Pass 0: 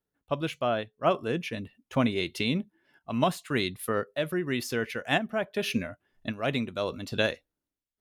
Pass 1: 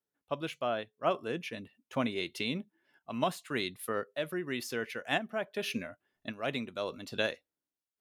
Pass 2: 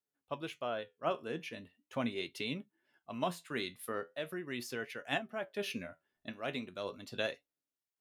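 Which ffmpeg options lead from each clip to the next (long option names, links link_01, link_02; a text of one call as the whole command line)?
ffmpeg -i in.wav -af "highpass=frequency=230:poles=1,volume=-4.5dB" out.wav
ffmpeg -i in.wav -af "flanger=delay=7:depth=5.9:regen=66:speed=0.4:shape=sinusoidal" out.wav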